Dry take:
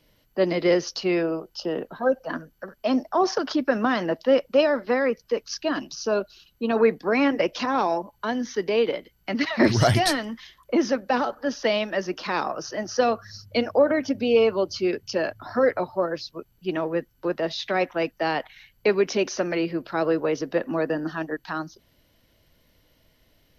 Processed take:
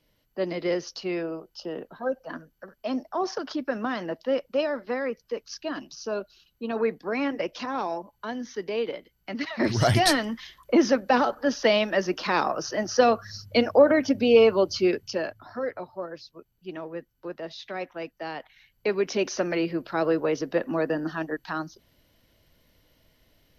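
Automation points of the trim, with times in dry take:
9.63 s -6.5 dB
10.10 s +2 dB
14.85 s +2 dB
15.58 s -10 dB
18.37 s -10 dB
19.32 s -1 dB

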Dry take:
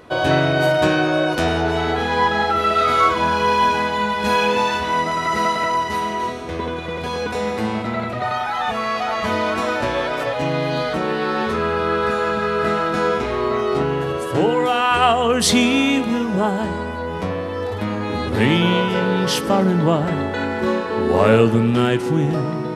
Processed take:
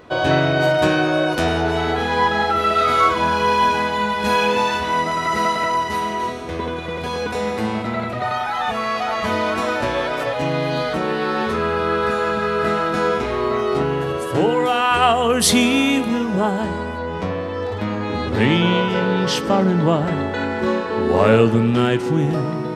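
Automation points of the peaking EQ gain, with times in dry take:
peaking EQ 11 kHz 0.5 oct
-9.5 dB
from 0.78 s +1.5 dB
from 15.15 s +7.5 dB
from 16.08 s -2 dB
from 16.98 s -13 dB
from 19.77 s -6.5 dB
from 22.18 s +0.5 dB

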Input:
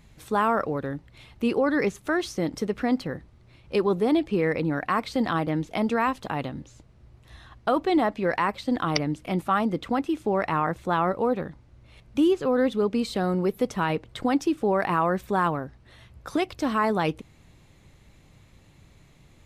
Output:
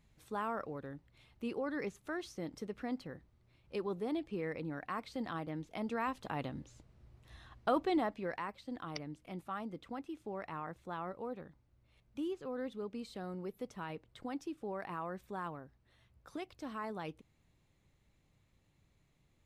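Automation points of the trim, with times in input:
5.69 s -15 dB
6.55 s -8 dB
7.78 s -8 dB
8.56 s -18 dB

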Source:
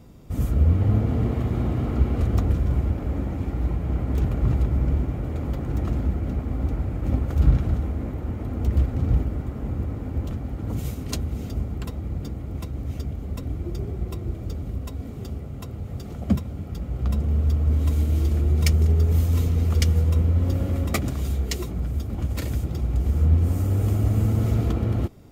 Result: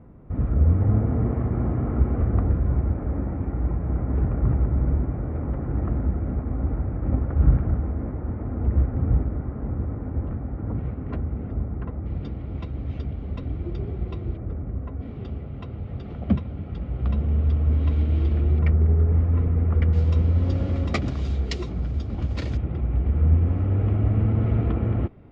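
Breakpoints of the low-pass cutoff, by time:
low-pass 24 dB/octave
1.8 kHz
from 12.06 s 3.7 kHz
from 14.37 s 1.9 kHz
from 15.01 s 3.4 kHz
from 18.59 s 1.9 kHz
from 19.93 s 5.1 kHz
from 22.57 s 2.6 kHz

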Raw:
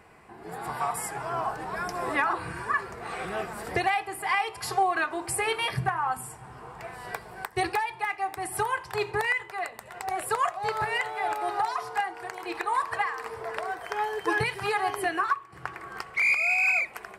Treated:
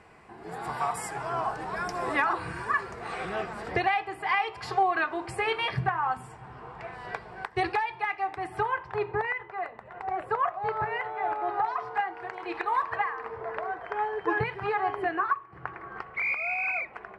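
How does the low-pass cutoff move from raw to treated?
3.03 s 7.9 kHz
3.82 s 3.8 kHz
8.20 s 3.8 kHz
9.05 s 1.6 kHz
11.33 s 1.6 kHz
12.69 s 3.3 kHz
13.16 s 1.8 kHz

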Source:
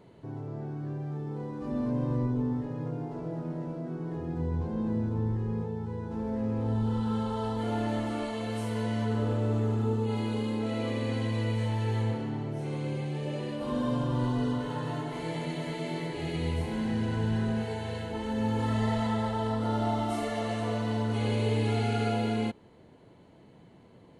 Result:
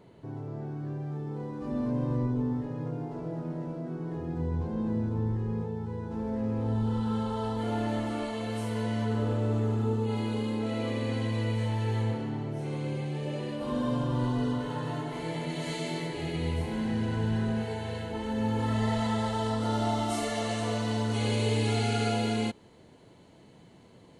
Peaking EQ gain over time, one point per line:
peaking EQ 6.9 kHz 2 oct
15.47 s +0.5 dB
15.72 s +12 dB
16.33 s 0 dB
18.64 s 0 dB
19.35 s +9.5 dB

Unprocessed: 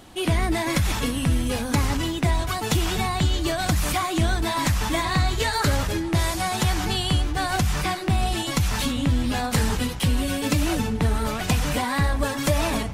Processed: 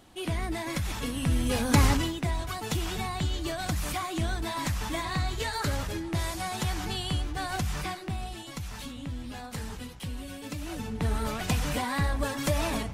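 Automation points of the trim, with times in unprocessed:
0.94 s -9 dB
1.86 s +2 dB
2.19 s -8 dB
7.81 s -8 dB
8.37 s -15 dB
10.61 s -15 dB
11.12 s -5.5 dB

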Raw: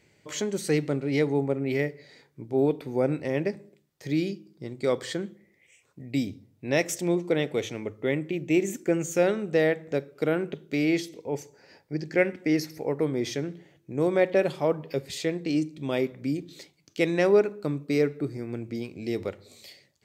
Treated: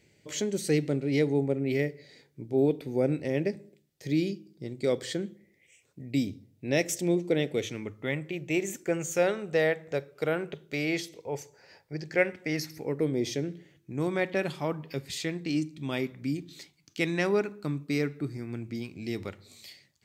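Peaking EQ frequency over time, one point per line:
peaking EQ -9.5 dB 1.1 oct
7.51 s 1.1 kHz
8.31 s 260 Hz
12.41 s 260 Hz
13.25 s 1.5 kHz
13.96 s 510 Hz

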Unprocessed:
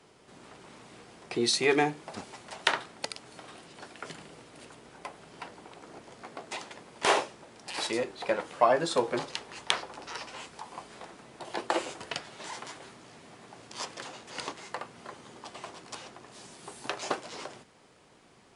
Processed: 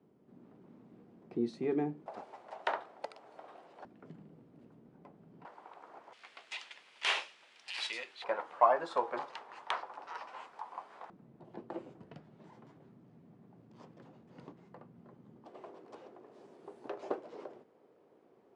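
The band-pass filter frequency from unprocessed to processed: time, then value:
band-pass filter, Q 1.6
220 Hz
from 2.06 s 690 Hz
from 3.85 s 190 Hz
from 5.45 s 950 Hz
from 6.13 s 2.8 kHz
from 8.24 s 960 Hz
from 11.10 s 170 Hz
from 15.46 s 420 Hz

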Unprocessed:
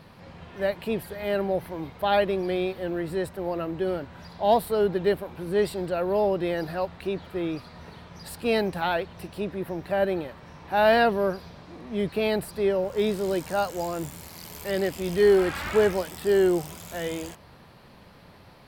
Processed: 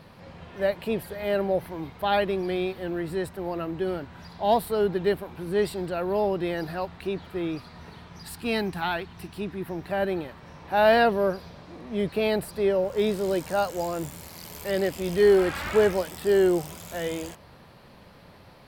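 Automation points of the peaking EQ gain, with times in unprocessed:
peaking EQ 550 Hz 0.4 oct
+2 dB
from 1.66 s -4.5 dB
from 8.22 s -15 dB
from 9.69 s -4.5 dB
from 10.44 s +2 dB

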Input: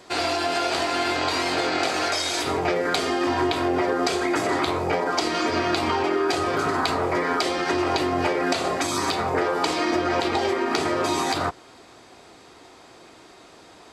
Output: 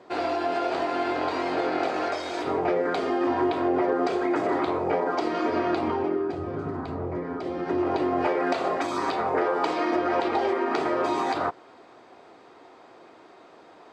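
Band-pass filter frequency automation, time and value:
band-pass filter, Q 0.53
5.70 s 460 Hz
6.36 s 110 Hz
7.33 s 110 Hz
8.31 s 650 Hz

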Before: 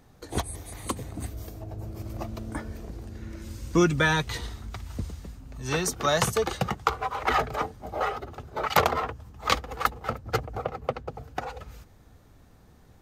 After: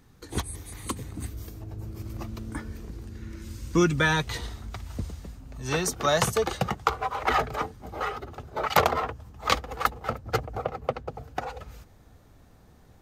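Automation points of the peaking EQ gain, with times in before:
peaking EQ 650 Hz 0.69 oct
3.50 s -10 dB
4.29 s +1.5 dB
7.30 s +1.5 dB
8.01 s -9.5 dB
8.41 s +1.5 dB

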